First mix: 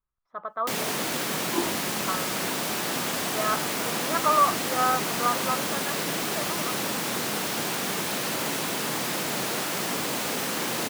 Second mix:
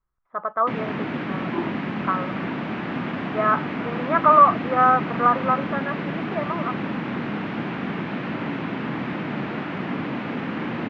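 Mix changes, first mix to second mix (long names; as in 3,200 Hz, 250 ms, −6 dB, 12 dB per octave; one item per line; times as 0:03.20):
speech +7.5 dB
first sound: add low shelf with overshoot 350 Hz +6.5 dB, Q 1.5
master: add low-pass filter 2,500 Hz 24 dB per octave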